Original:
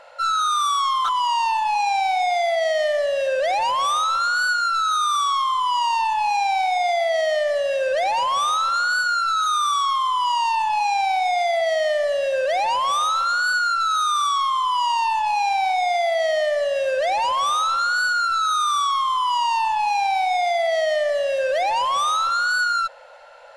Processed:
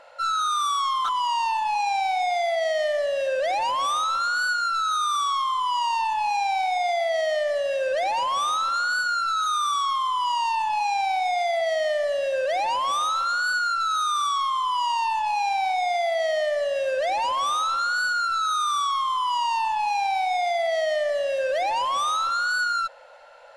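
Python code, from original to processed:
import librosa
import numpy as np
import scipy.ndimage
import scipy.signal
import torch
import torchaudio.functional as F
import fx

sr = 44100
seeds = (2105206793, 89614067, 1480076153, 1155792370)

y = fx.peak_eq(x, sr, hz=290.0, db=8.0, octaves=0.44)
y = y * 10.0 ** (-3.5 / 20.0)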